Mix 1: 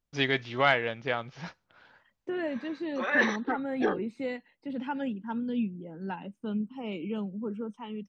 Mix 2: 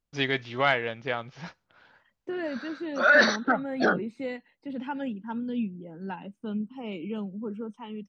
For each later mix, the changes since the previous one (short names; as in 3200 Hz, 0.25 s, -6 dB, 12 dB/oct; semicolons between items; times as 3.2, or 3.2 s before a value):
background: remove fixed phaser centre 950 Hz, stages 8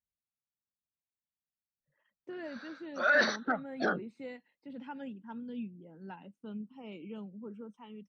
first voice: muted; second voice -10.0 dB; background -7.0 dB